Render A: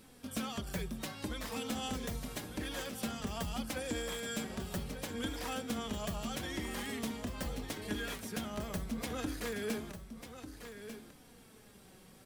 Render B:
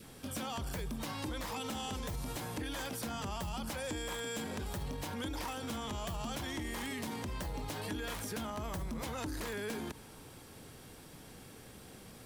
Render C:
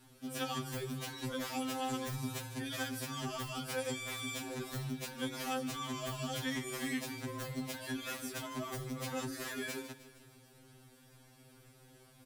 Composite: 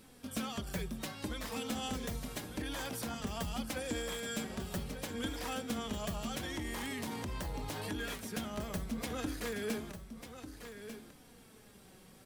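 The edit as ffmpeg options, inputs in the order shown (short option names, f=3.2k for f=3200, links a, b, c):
-filter_complex "[1:a]asplit=2[a][b];[0:a]asplit=3[c][d][e];[c]atrim=end=2.622[f];[a]atrim=start=2.618:end=3.142[g];[d]atrim=start=3.138:end=6.572[h];[b]atrim=start=6.568:end=8.002[i];[e]atrim=start=7.998[j];[f][g]acrossfade=d=0.004:c1=hsin:c2=hsin[k];[k][h]acrossfade=d=0.004:c1=hsin:c2=hsin[l];[l][i]acrossfade=d=0.004:c1=hsin:c2=hsin[m];[m][j]acrossfade=d=0.004:c1=hsin:c2=hsin"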